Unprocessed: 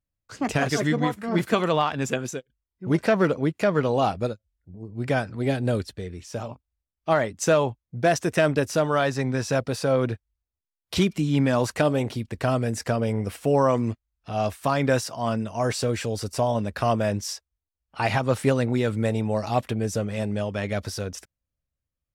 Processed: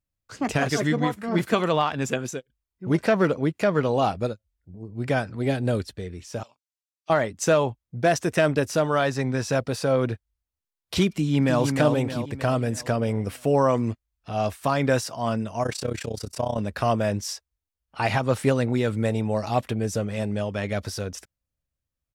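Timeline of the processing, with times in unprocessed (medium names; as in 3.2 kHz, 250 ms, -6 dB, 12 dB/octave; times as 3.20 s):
6.43–7.10 s: band-pass filter 6.3 kHz, Q 0.97
11.08–11.63 s: echo throw 310 ms, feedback 50%, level -5 dB
15.63–16.58 s: AM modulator 31 Hz, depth 80%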